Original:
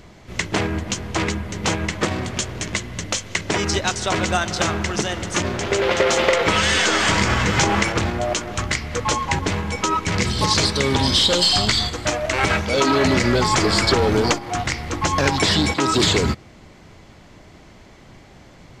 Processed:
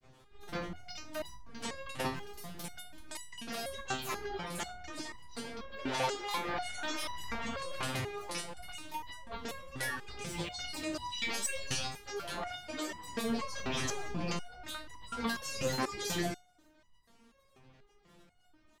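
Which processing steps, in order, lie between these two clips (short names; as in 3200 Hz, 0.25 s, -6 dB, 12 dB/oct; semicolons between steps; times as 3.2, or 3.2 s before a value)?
grains 0.1 s, grains 20/s, spray 35 ms, pitch spread up and down by 12 st; stuck buffer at 2.15/7.66/9.62, samples 256, times 8; stepped resonator 4.1 Hz 130–970 Hz; gain -3 dB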